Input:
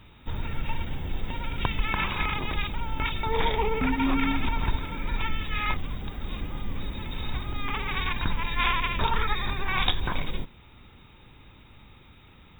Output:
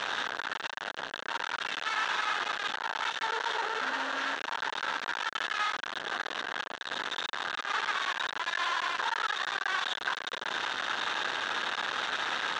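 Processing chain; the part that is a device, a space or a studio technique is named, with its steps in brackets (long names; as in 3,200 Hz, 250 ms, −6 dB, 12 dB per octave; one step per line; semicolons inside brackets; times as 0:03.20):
home computer beeper (sign of each sample alone; loudspeaker in its box 710–5,100 Hz, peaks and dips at 1,600 Hz +9 dB, 2,300 Hz −10 dB, 4,900 Hz −8 dB)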